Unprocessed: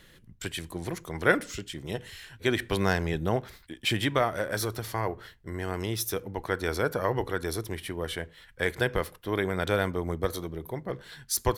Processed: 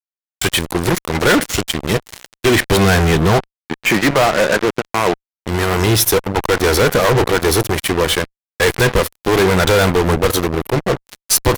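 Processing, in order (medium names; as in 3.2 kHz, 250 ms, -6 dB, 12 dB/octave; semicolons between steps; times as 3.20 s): 3.38–5.39 s: elliptic band-pass 160–2200 Hz, stop band 40 dB; fuzz box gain 37 dB, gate -38 dBFS; trim +4 dB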